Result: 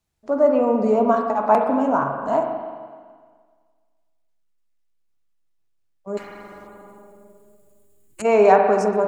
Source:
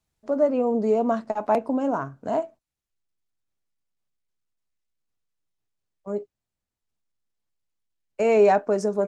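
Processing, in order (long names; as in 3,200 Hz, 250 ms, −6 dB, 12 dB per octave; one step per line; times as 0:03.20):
dynamic equaliser 1,100 Hz, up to +8 dB, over −38 dBFS, Q 1.4
0:06.67–0:08.25: gain on a spectral selection 350–6,600 Hz −15 dB
spring reverb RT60 1.7 s, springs 42/57 ms, chirp 40 ms, DRR 3 dB
0:06.17–0:08.22: every bin compressed towards the loudest bin 4 to 1
level +1 dB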